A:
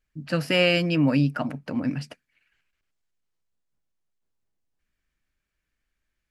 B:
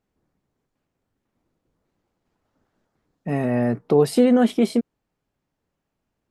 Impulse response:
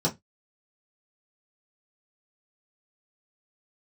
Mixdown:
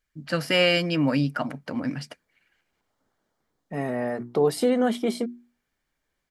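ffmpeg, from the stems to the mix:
-filter_complex "[0:a]volume=2.5dB[a];[1:a]bandreject=f=60:t=h:w=6,bandreject=f=120:t=h:w=6,bandreject=f=180:t=h:w=6,bandreject=f=240:t=h:w=6,bandreject=f=300:t=h:w=6,bandreject=f=360:t=h:w=6,adelay=450,volume=-1.5dB[b];[a][b]amix=inputs=2:normalize=0,lowshelf=f=360:g=-7,bandreject=f=2.6k:w=9.5"

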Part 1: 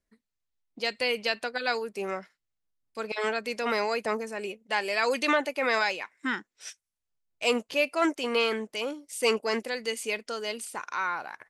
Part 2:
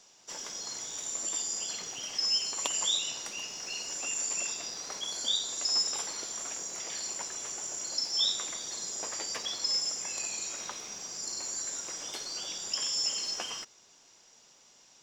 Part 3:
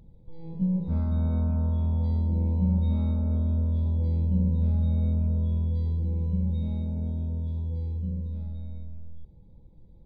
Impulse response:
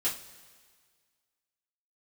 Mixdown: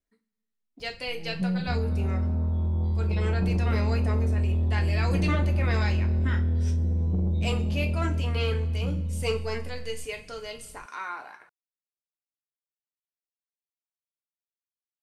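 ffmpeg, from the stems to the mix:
-filter_complex "[0:a]volume=-9.5dB,asplit=2[a][b];[b]volume=-5.5dB[c];[2:a]dynaudnorm=f=430:g=11:m=5dB,asoftclip=type=tanh:threshold=-21dB,adelay=800,volume=0.5dB[d];[3:a]atrim=start_sample=2205[e];[c][e]afir=irnorm=-1:irlink=0[f];[a][d][f]amix=inputs=3:normalize=0,asoftclip=type=tanh:threshold=-13dB"

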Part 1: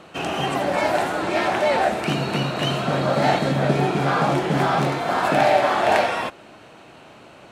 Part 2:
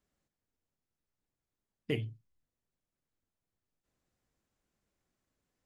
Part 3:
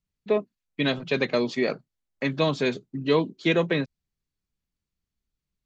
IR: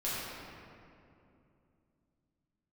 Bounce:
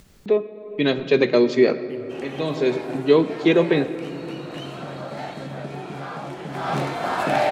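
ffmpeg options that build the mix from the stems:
-filter_complex "[0:a]adelay=1950,volume=-3dB,afade=t=in:st=6.53:d=0.22:silence=0.223872[a];[1:a]volume=-10dB,asplit=2[b][c];[2:a]equalizer=f=380:t=o:w=0.75:g=9,dynaudnorm=f=150:g=9:m=11.5dB,volume=-4dB,asplit=2[d][e];[e]volume=-16.5dB[f];[c]apad=whole_len=249398[g];[d][g]sidechaincompress=threshold=-56dB:ratio=8:attack=7.3:release=691[h];[3:a]atrim=start_sample=2205[i];[f][i]afir=irnorm=-1:irlink=0[j];[a][b][h][j]amix=inputs=4:normalize=0,acompressor=mode=upward:threshold=-26dB:ratio=2.5"

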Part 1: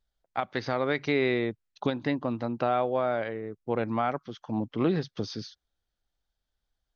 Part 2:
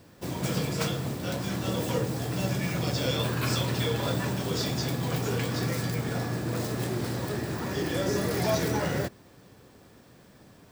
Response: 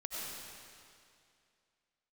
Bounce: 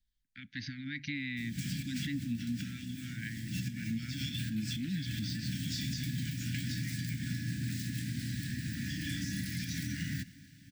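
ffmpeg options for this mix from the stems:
-filter_complex "[0:a]alimiter=limit=-21.5dB:level=0:latency=1:release=35,volume=-1.5dB,asplit=2[a][b];[1:a]equalizer=f=14k:t=o:w=0.45:g=-3.5,adelay=1150,volume=-3dB,asplit=2[c][d];[d]volume=-23.5dB[e];[b]apad=whole_len=523239[f];[c][f]sidechaincompress=threshold=-40dB:ratio=8:attack=16:release=110[g];[e]aecho=0:1:254|508|762|1016|1270|1524|1778|2032|2286:1|0.58|0.336|0.195|0.113|0.0656|0.0381|0.0221|0.0128[h];[a][g][h]amix=inputs=3:normalize=0,asuperstop=centerf=680:order=20:qfactor=0.52,alimiter=level_in=2.5dB:limit=-24dB:level=0:latency=1:release=167,volume=-2.5dB"

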